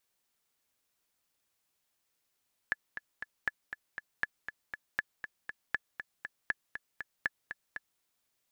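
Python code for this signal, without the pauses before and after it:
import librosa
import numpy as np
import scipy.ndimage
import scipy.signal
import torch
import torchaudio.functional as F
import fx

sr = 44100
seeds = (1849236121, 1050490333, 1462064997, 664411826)

y = fx.click_track(sr, bpm=238, beats=3, bars=7, hz=1720.0, accent_db=9.5, level_db=-16.0)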